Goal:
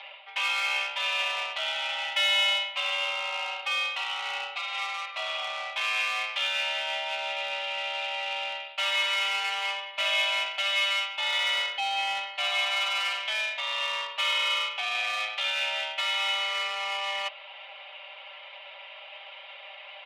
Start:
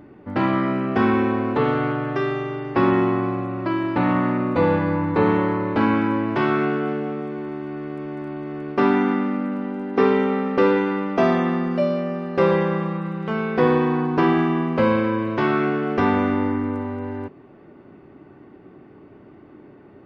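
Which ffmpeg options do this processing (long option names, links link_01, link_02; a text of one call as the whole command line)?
ffmpeg -i in.wav -filter_complex "[0:a]aemphasis=mode=production:type=bsi,highpass=frequency=500:width_type=q:width=0.5412,highpass=frequency=500:width_type=q:width=1.307,lowpass=frequency=3200:width_type=q:width=0.5176,lowpass=frequency=3200:width_type=q:width=0.7071,lowpass=frequency=3200:width_type=q:width=1.932,afreqshift=200,areverse,acompressor=threshold=-37dB:ratio=12,areverse,aecho=1:1:5.1:0.97,asplit=2[link_01][link_02];[link_02]asoftclip=type=tanh:threshold=-39.5dB,volume=-10dB[link_03];[link_01][link_03]amix=inputs=2:normalize=0,aexciter=amount=13.2:drive=4.6:freq=2400" out.wav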